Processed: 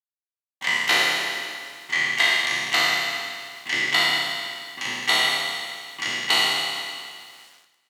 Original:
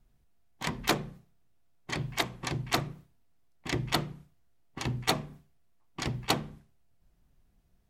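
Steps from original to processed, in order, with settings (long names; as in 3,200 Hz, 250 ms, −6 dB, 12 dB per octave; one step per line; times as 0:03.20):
peak hold with a decay on every bin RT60 2.06 s
parametric band 420 Hz −3.5 dB 2 octaves
hollow resonant body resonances 2,000/2,900 Hz, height 13 dB, ringing for 20 ms
bit reduction 8 bits
meter weighting curve A
single-tap delay 440 ms −23 dB
reverb whose tail is shaped and stops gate 300 ms falling, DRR 7 dB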